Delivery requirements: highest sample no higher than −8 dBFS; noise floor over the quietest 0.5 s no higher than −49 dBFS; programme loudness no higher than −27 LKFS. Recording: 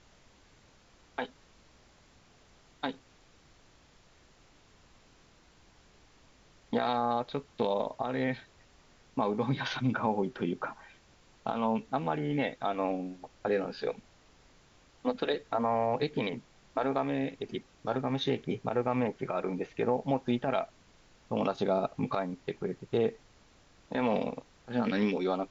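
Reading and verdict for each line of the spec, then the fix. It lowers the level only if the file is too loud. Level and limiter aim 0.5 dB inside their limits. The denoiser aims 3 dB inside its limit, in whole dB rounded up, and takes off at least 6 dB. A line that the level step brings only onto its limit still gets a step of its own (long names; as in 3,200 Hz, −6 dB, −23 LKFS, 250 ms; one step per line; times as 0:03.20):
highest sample −15.5 dBFS: in spec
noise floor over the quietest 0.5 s −61 dBFS: in spec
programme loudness −32.5 LKFS: in spec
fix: no processing needed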